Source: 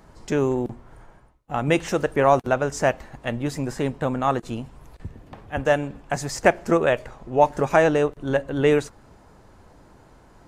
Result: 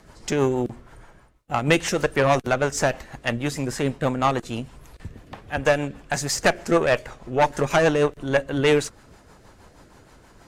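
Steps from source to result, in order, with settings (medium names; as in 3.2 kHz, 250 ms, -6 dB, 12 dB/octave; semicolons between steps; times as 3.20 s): tilt shelf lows -4 dB, about 1.1 kHz; valve stage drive 15 dB, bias 0.45; rotary cabinet horn 6.3 Hz; trim +7 dB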